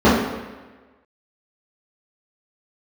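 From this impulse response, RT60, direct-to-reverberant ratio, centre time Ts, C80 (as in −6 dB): 1.3 s, −12.0 dB, 68 ms, 4.0 dB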